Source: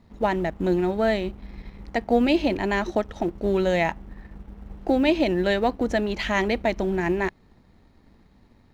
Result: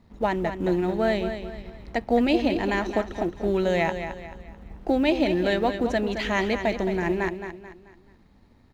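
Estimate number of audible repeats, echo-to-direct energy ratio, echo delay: 4, −8.5 dB, 218 ms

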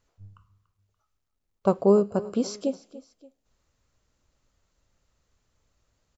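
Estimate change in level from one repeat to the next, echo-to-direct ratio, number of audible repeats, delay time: −7.0 dB, −17.0 dB, 2, 288 ms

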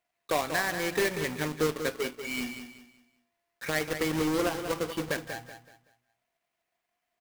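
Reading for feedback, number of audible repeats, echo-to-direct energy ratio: 32%, 3, −8.5 dB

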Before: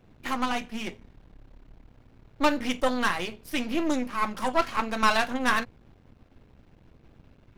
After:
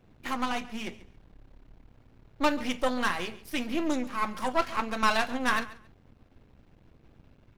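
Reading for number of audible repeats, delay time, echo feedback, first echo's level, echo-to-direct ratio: 2, 138 ms, 19%, −18.0 dB, −18.0 dB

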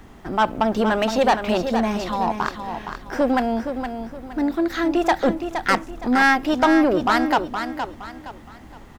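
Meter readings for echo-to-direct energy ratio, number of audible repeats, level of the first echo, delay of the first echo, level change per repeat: −7.5 dB, 3, −8.0 dB, 467 ms, −9.5 dB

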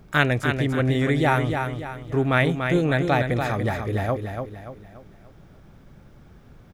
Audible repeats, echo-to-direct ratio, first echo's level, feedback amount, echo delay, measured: 4, −5.0 dB, −6.0 dB, 41%, 289 ms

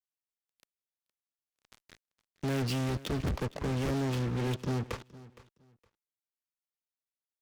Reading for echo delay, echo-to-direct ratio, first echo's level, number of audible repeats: 464 ms, −19.0 dB, −19.0 dB, 2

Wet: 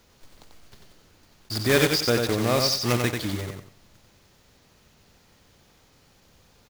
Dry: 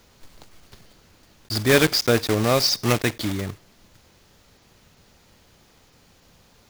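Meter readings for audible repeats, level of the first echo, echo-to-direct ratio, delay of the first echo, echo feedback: 3, −4.5 dB, −4.0 dB, 91 ms, 28%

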